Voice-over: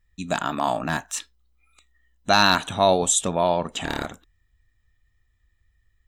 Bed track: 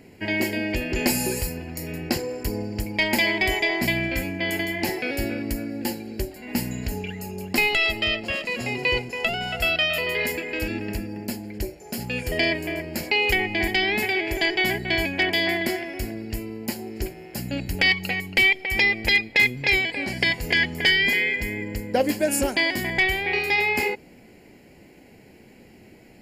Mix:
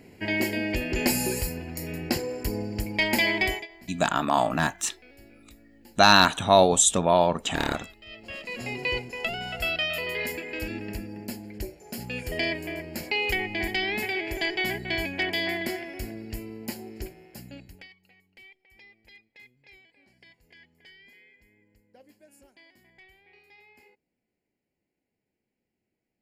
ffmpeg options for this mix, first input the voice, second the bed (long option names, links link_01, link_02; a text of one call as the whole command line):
ffmpeg -i stem1.wav -i stem2.wav -filter_complex "[0:a]adelay=3700,volume=1dB[link_01];[1:a]volume=18dB,afade=type=out:start_time=3.43:duration=0.24:silence=0.0668344,afade=type=in:start_time=8.05:duration=0.62:silence=0.1,afade=type=out:start_time=16.76:duration=1.12:silence=0.0375837[link_02];[link_01][link_02]amix=inputs=2:normalize=0" out.wav